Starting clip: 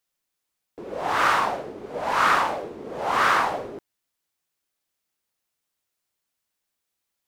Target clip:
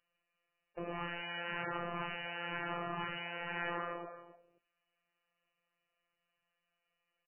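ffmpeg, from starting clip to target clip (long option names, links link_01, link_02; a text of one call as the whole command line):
ffmpeg -i in.wav -filter_complex "[0:a]bass=frequency=250:gain=-2,treble=frequency=4000:gain=14,asplit=2[link_01][link_02];[link_02]adelay=264,lowpass=frequency=2700:poles=1,volume=-6.5dB,asplit=2[link_03][link_04];[link_04]adelay=264,lowpass=frequency=2700:poles=1,volume=0.19,asplit=2[link_05][link_06];[link_06]adelay=264,lowpass=frequency=2700:poles=1,volume=0.19[link_07];[link_01][link_03][link_05][link_07]amix=inputs=4:normalize=0,acrusher=bits=5:mode=log:mix=0:aa=0.000001,acompressor=threshold=-23dB:ratio=6,aecho=1:1:1.7:0.52,afftfilt=real='re*lt(hypot(re,im),0.112)':imag='im*lt(hypot(re,im),0.112)':win_size=1024:overlap=0.75,acrossover=split=180|3000[link_08][link_09][link_10];[link_09]acompressor=threshold=-45dB:ratio=1.5[link_11];[link_08][link_11][link_10]amix=inputs=3:normalize=0,afftfilt=real='hypot(re,im)*cos(PI*b)':imag='0':win_size=1024:overlap=0.75,alimiter=limit=-20.5dB:level=0:latency=1:release=398,volume=5dB" -ar 11025 -c:a libmp3lame -b:a 8k out.mp3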